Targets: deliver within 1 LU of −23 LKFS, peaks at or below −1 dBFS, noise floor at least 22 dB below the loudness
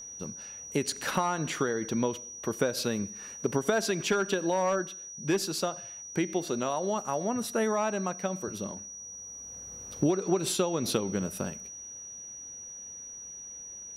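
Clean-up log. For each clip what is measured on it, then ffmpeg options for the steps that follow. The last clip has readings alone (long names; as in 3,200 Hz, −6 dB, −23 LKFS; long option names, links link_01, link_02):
interfering tone 5,800 Hz; level of the tone −41 dBFS; integrated loudness −31.5 LKFS; sample peak −13.5 dBFS; target loudness −23.0 LKFS
→ -af "bandreject=frequency=5800:width=30"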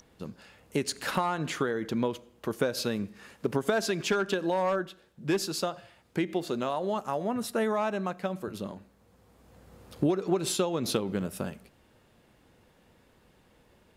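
interfering tone none found; integrated loudness −31.0 LKFS; sample peak −13.5 dBFS; target loudness −23.0 LKFS
→ -af "volume=8dB"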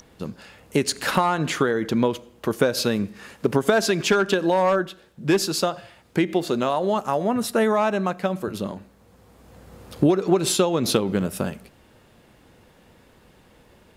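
integrated loudness −23.0 LKFS; sample peak −5.5 dBFS; background noise floor −55 dBFS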